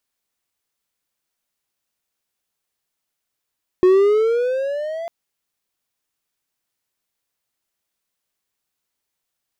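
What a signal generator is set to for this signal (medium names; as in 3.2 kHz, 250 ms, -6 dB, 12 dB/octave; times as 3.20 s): gliding synth tone triangle, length 1.25 s, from 362 Hz, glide +11 st, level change -17 dB, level -6.5 dB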